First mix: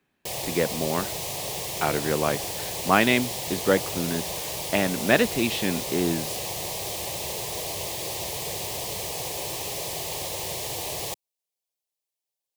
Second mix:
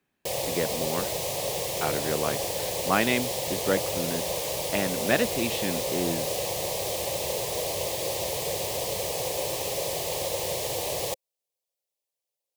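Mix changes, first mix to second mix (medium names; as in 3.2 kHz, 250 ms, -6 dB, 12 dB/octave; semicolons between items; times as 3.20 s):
speech -4.5 dB; background: add peaking EQ 530 Hz +9.5 dB 0.43 oct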